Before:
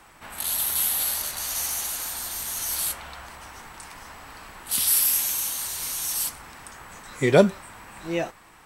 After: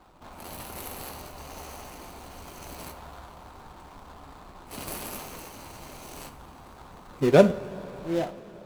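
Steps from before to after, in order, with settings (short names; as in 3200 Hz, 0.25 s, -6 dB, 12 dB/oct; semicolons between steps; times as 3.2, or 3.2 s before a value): median filter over 25 samples; two-slope reverb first 0.33 s, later 4.8 s, from -18 dB, DRR 9 dB; crackling interface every 0.88 s repeat, from 0.45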